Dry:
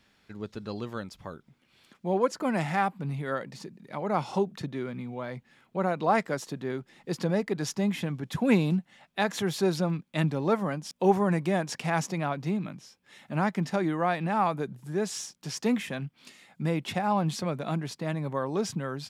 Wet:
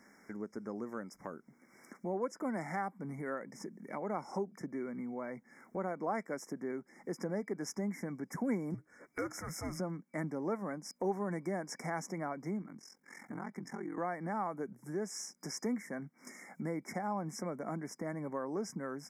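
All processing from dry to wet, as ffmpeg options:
-filter_complex "[0:a]asettb=1/sr,asplit=3[s0][s1][s2];[s0]atrim=end=8.744[s3];[s1]atrim=start=8.74:end=9.8,asetpts=PTS-STARTPTS,afade=t=in:d=0.004:c=qsin,afade=t=out:st=1.056:d=0.004:c=qsin,volume=10.6,asoftclip=hard,volume=0.0944,afreqshift=-310[s4];[s2]atrim=start=9.796[s5];[s3][s4]acrossfade=d=0.004:c1=hsin:c2=qsin[s6];[s6][s5]acrossfade=d=0.004:c1=qsin:c2=hsin,asettb=1/sr,asplit=3[s7][s8][s9];[s7]atrim=end=12.624[s10];[s8]atrim=start=12.62:end=13.98,asetpts=PTS-STARTPTS,afade=t=in:d=0.004:c=qsin,afade=t=out:st=1.356:d=0.004:c=qsin,bandreject=f=600:w=5.3,acompressor=threshold=0.0141:ratio=2:attack=3.2:release=140:knee=1:detection=peak,aeval=exprs='val(0)*sin(2*PI*22*n/s)':c=same[s11];[s9]atrim=start=13.976[s12];[s10][s11]acrossfade=d=0.004:c1=hsin:c2=qsin[s13];[s13][s12]acrossfade=d=0.004:c1=qsin:c2=hsin,afftfilt=real='re*(1-between(b*sr/4096,2300,5000))':imag='im*(1-between(b*sr/4096,2300,5000))':win_size=4096:overlap=0.75,lowshelf=f=150:t=q:w=1.5:g=-14,acompressor=threshold=0.00251:ratio=2,volume=1.78"

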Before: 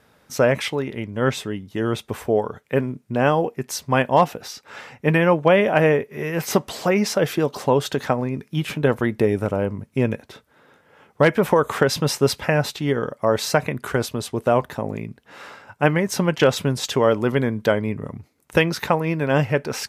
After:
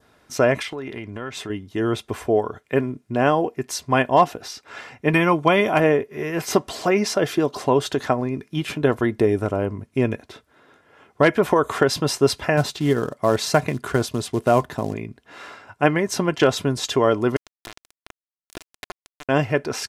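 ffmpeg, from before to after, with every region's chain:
-filter_complex "[0:a]asettb=1/sr,asplit=3[s0][s1][s2];[s0]atrim=end=0.624[s3];[s1]atrim=start=0.62:end=1.5,asetpts=PTS-STARTPTS,afade=t=in:d=0.004:c=qsin,afade=t=out:st=0.876:d=0.004:c=qsin,highpass=63,equalizer=f=1600:t=o:w=2:g=4,acompressor=threshold=0.0447:ratio=6:attack=3.2:release=140:knee=1:detection=peak[s4];[s2]atrim=start=1.496[s5];[s3][s4]acrossfade=d=0.004:c1=hsin:c2=qsin[s6];[s6][s5]acrossfade=d=0.004:c1=qsin:c2=hsin,asettb=1/sr,asplit=3[s7][s8][s9];[s7]atrim=end=5.134[s10];[s8]atrim=start=5.13:end=5.8,asetpts=PTS-STARTPTS,afade=t=in:d=0.004:c=qsin,afade=t=out:st=0.666:d=0.004:c=qsin,highshelf=f=4900:g=8.5,aecho=1:1:0.9:0.35,atrim=end_sample=29547[s11];[s9]atrim=start=5.796[s12];[s10][s11]acrossfade=d=0.004:c1=hsin:c2=qsin[s13];[s13][s12]acrossfade=d=0.004:c1=qsin:c2=hsin,asettb=1/sr,asplit=3[s14][s15][s16];[s14]atrim=end=12.574[s17];[s15]atrim=start=12.57:end=14.94,asetpts=PTS-STARTPTS,afade=t=in:d=0.004:c=qsin,afade=t=out:st=2.366:d=0.004:c=qsin,equalizer=f=160:t=o:w=0.95:g=5.5,acrusher=bits=6:mode=log:mix=0:aa=0.000001[s18];[s16]atrim=start=14.936[s19];[s17][s18]acrossfade=d=0.004:c1=hsin:c2=qsin[s20];[s20][s19]acrossfade=d=0.004:c1=qsin:c2=hsin,asettb=1/sr,asplit=3[s21][s22][s23];[s21]atrim=end=17.364[s24];[s22]atrim=start=17.36:end=19.29,asetpts=PTS-STARTPTS,afade=t=in:d=0.004:c=qsin,afade=t=out:st=1.926:d=0.004:c=qsin,highshelf=f=5900:g=5.5,acompressor=threshold=0.0398:ratio=8:attack=3.2:release=140:knee=1:detection=peak,aeval=exprs='val(0)*gte(abs(val(0)),0.0708)':c=same[s25];[s23]atrim=start=19.286[s26];[s24][s25]acrossfade=d=0.004:c1=hsin:c2=qsin[s27];[s27][s26]acrossfade=d=0.004:c1=qsin:c2=hsin,lowpass=11000,aecho=1:1:2.9:0.38,adynamicequalizer=threshold=0.0112:dfrequency=2300:dqfactor=2:tfrequency=2300:tqfactor=2:attack=5:release=100:ratio=0.375:range=2:mode=cutabove:tftype=bell"

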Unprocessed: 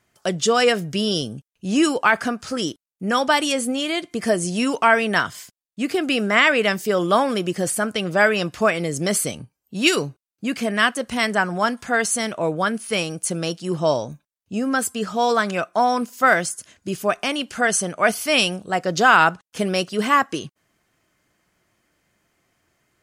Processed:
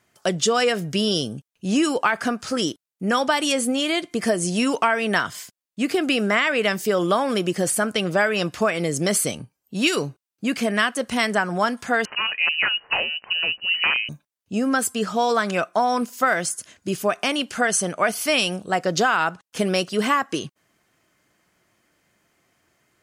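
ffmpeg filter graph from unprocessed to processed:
-filter_complex "[0:a]asettb=1/sr,asplit=3[s0][s1][s2];[s0]atrim=end=12.054[s3];[s1]atrim=start=12.05:end=14.09,asetpts=PTS-STARTPTS,afade=t=in:d=0.004:c=qsin,afade=t=out:st=2.036:d=0.004:c=qsin,aeval=exprs='(mod(4.22*val(0)+1,2)-1)/4.22':c=same,lowpass=f=2600:t=q:w=0.5098,lowpass=f=2600:t=q:w=0.6013,lowpass=f=2600:t=q:w=0.9,lowpass=f=2600:t=q:w=2.563,afreqshift=-3100[s4];[s2]atrim=start=14.086[s5];[s3][s4]acrossfade=d=0.004:c1=hsin:c2=qsin[s6];[s6][s5]acrossfade=d=0.004:c1=qsin:c2=hsin,lowshelf=f=65:g=-10,acompressor=threshold=0.126:ratio=6,volume=1.26"

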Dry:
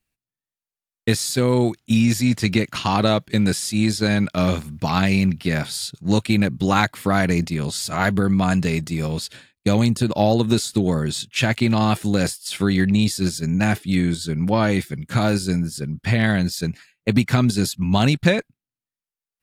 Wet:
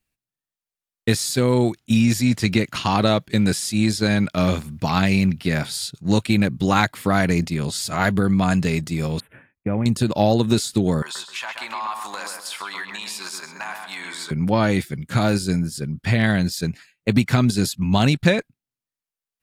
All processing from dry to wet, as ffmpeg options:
-filter_complex "[0:a]asettb=1/sr,asplit=3[s0][s1][s2];[s0]atrim=end=9.204[s3];[s1]atrim=start=9.2:end=9.86,asetpts=PTS-STARTPTS,afade=t=in:d=0.004:c=qsin,afade=t=out:st=0.656:d=0.004:c=qsin,aemphasis=mode=reproduction:type=75kf,acompressor=threshold=0.0501:ratio=1.5:attack=3.2:release=140:knee=1:detection=peak,asuperstop=centerf=5400:order=8:qfactor=0.67[s4];[s2]atrim=start=9.856[s5];[s3][s4]acrossfade=d=0.004:c1=hsin:c2=qsin[s6];[s6][s5]acrossfade=d=0.004:c1=qsin:c2=hsin,asettb=1/sr,asplit=3[s7][s8][s9];[s7]atrim=end=11.024[s10];[s8]atrim=start=11.02:end=14.31,asetpts=PTS-STARTPTS,afade=t=in:d=0.004:c=qsin,afade=t=out:st=3.286:d=0.004:c=qsin,highpass=f=1000:t=q:w=5.7,acompressor=threshold=0.0398:ratio=4:attack=3.2:release=140:knee=1:detection=peak,asplit=2[s11][s12];[s12]adelay=129,lowpass=f=2200:p=1,volume=0.631,asplit=2[s13][s14];[s14]adelay=129,lowpass=f=2200:p=1,volume=0.39,asplit=2[s15][s16];[s16]adelay=129,lowpass=f=2200:p=1,volume=0.39,asplit=2[s17][s18];[s18]adelay=129,lowpass=f=2200:p=1,volume=0.39,asplit=2[s19][s20];[s20]adelay=129,lowpass=f=2200:p=1,volume=0.39[s21];[s11][s13][s15][s17][s19][s21]amix=inputs=6:normalize=0,atrim=end_sample=145089[s22];[s9]atrim=start=14.306[s23];[s10][s22]acrossfade=d=0.004:c1=hsin:c2=qsin[s24];[s24][s23]acrossfade=d=0.004:c1=qsin:c2=hsin"

